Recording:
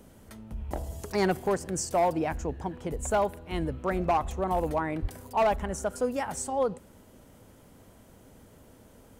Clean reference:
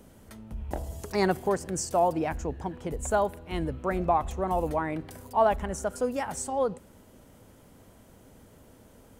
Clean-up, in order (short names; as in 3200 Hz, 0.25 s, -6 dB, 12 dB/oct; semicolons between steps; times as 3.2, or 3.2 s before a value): clip repair -19 dBFS; de-plosive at 5.01